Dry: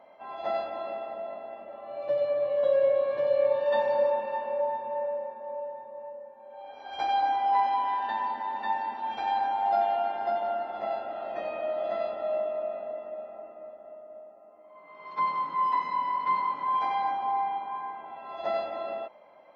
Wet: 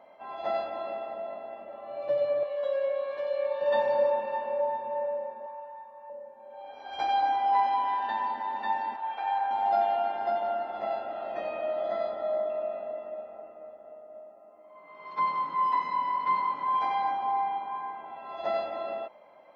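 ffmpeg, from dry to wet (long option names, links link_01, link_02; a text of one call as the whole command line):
ffmpeg -i in.wav -filter_complex "[0:a]asettb=1/sr,asplit=3[link_01][link_02][link_03];[link_01]atrim=end=2.434[link_04];[link_02]atrim=start=2.43:end=3.61,asetpts=PTS-STARTPTS,afade=type=in:duration=0.004:curve=qsin,afade=type=out:start_time=1.176:duration=0.004:curve=qsin,highpass=frequency=920:poles=1[link_05];[link_03]atrim=start=3.606[link_06];[link_04][link_05]acrossfade=duration=0.004:curve1=hsin:curve2=qsin[link_07];[link_07][link_06]acrossfade=duration=0.004:curve1=qsin:curve2=hsin,asettb=1/sr,asplit=3[link_08][link_09][link_10];[link_08]atrim=end=5.464[link_11];[link_09]atrim=start=5.46:end=6.1,asetpts=PTS-STARTPTS,afade=type=in:duration=0.004:curve=qsin,afade=type=out:start_time=0.636:duration=0.004:curve=qsin,lowshelf=frequency=730:width_type=q:width=1.5:gain=-9.5[link_12];[link_10]atrim=start=6.096[link_13];[link_11][link_12]acrossfade=duration=0.004:curve1=hsin:curve2=qsin[link_14];[link_14][link_13]acrossfade=duration=0.004:curve1=qsin:curve2=hsin,asettb=1/sr,asplit=3[link_15][link_16][link_17];[link_15]atrim=end=8.964[link_18];[link_16]atrim=start=8.96:end=9.51,asetpts=PTS-STARTPTS,afade=type=in:duration=0.004:curve=qsin,afade=type=out:start_time=0.546:duration=0.004:curve=qsin,highpass=570,lowpass=2600[link_19];[link_17]atrim=start=9.506[link_20];[link_18][link_19]acrossfade=duration=0.004:curve1=hsin:curve2=qsin[link_21];[link_21][link_20]acrossfade=duration=0.004:curve1=qsin:curve2=hsin,asettb=1/sr,asplit=3[link_22][link_23][link_24];[link_22]atrim=end=11.804[link_25];[link_23]atrim=start=11.8:end=12.5,asetpts=PTS-STARTPTS,afade=type=in:duration=0.004:curve=qsin,afade=type=out:start_time=0.696:duration=0.004:curve=qsin,bandreject=frequency=2700:width=6.7[link_26];[link_24]atrim=start=12.496[link_27];[link_25][link_26]acrossfade=duration=0.004:curve1=hsin:curve2=qsin[link_28];[link_28][link_27]acrossfade=duration=0.004:curve1=qsin:curve2=hsin,asettb=1/sr,asplit=3[link_29][link_30][link_31];[link_29]atrim=end=13.214[link_32];[link_30]atrim=start=13.21:end=14.14,asetpts=PTS-STARTPTS,afade=type=in:duration=0.004:curve=qsin,afade=type=out:start_time=0.926:duration=0.004:curve=qsin,tremolo=f=150:d=0.333[link_33];[link_31]atrim=start=14.136[link_34];[link_32][link_33]acrossfade=duration=0.004:curve1=hsin:curve2=qsin[link_35];[link_35][link_34]acrossfade=duration=0.004:curve1=qsin:curve2=hsin" out.wav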